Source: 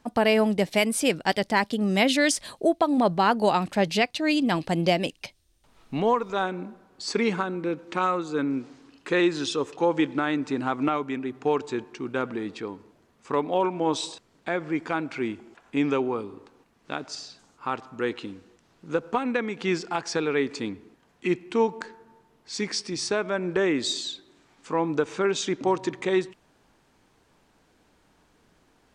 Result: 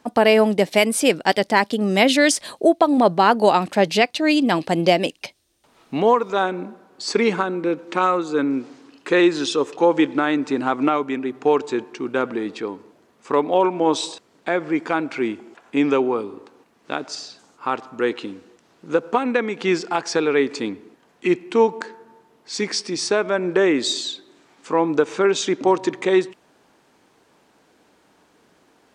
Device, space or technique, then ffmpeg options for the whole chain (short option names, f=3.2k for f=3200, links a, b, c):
filter by subtraction: -filter_complex "[0:a]asplit=2[a][b];[b]lowpass=370,volume=-1[c];[a][c]amix=inputs=2:normalize=0,volume=5dB"